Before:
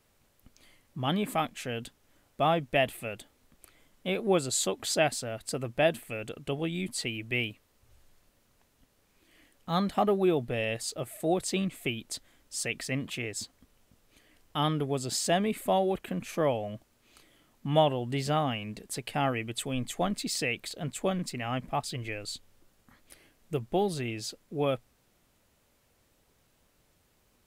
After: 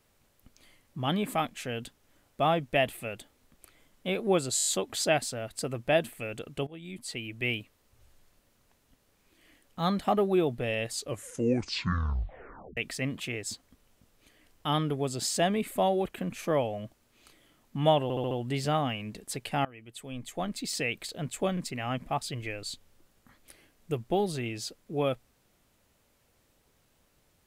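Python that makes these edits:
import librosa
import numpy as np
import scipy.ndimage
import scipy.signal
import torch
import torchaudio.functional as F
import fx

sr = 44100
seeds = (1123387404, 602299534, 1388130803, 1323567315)

y = fx.edit(x, sr, fx.stutter(start_s=4.56, slice_s=0.02, count=6),
    fx.fade_in_from(start_s=6.57, length_s=0.84, floor_db=-17.5),
    fx.tape_stop(start_s=10.85, length_s=1.82),
    fx.stutter(start_s=17.93, slice_s=0.07, count=5),
    fx.fade_in_from(start_s=19.27, length_s=1.28, floor_db=-22.5), tone=tone)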